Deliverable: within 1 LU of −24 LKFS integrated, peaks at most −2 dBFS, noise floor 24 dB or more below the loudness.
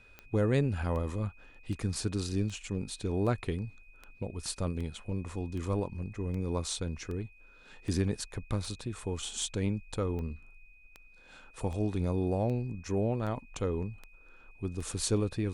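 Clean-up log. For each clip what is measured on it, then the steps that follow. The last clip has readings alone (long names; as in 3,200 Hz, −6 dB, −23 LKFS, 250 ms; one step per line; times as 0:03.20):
number of clicks 20; interfering tone 2,500 Hz; level of the tone −58 dBFS; integrated loudness −34.0 LKFS; sample peak −15.0 dBFS; target loudness −24.0 LKFS
→ click removal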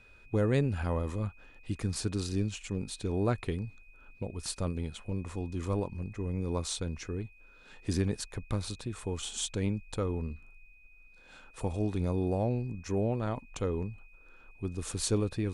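number of clicks 0; interfering tone 2,500 Hz; level of the tone −58 dBFS
→ notch filter 2,500 Hz, Q 30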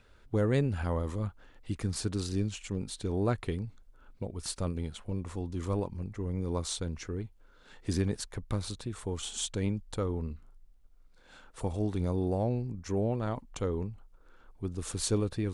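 interfering tone none found; integrated loudness −34.0 LKFS; sample peak −15.0 dBFS; target loudness −24.0 LKFS
→ level +10 dB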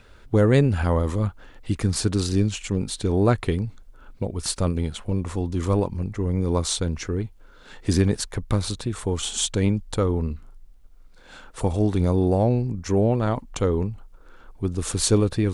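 integrated loudness −24.0 LKFS; sample peak −5.0 dBFS; background noise floor −49 dBFS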